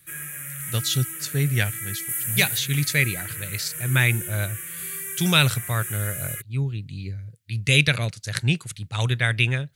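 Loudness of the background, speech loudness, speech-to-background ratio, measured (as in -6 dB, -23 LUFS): -30.0 LUFS, -24.0 LUFS, 6.0 dB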